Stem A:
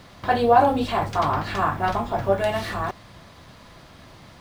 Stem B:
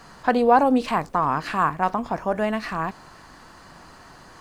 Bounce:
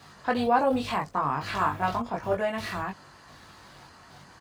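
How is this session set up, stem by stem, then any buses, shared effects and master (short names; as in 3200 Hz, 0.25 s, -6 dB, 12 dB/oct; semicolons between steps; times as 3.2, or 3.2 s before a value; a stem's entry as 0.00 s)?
-7.5 dB, 0.00 s, no send, high shelf 4100 Hz +7 dB; step gate "x..x..xx....xxxx" 128 bpm
-2.5 dB, 2.5 ms, polarity flipped, no send, dry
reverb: off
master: HPF 64 Hz; bell 3400 Hz +2.5 dB 2 oct; chorus voices 4, 0.57 Hz, delay 21 ms, depth 1.3 ms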